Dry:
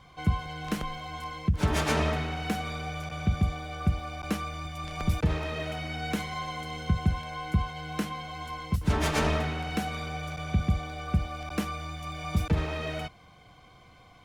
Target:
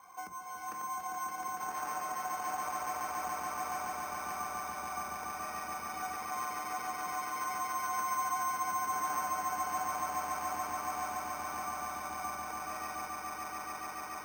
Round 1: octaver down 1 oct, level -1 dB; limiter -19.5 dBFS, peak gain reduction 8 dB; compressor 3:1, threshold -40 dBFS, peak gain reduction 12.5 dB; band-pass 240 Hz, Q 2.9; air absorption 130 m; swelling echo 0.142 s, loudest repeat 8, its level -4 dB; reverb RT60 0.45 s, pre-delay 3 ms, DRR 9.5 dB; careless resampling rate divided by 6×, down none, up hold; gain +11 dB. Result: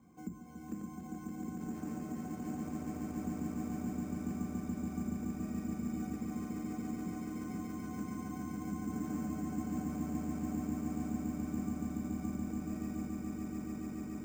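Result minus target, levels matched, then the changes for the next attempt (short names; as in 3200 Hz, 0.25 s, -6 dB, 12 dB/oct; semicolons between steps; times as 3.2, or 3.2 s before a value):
250 Hz band +19.5 dB
change: band-pass 940 Hz, Q 2.9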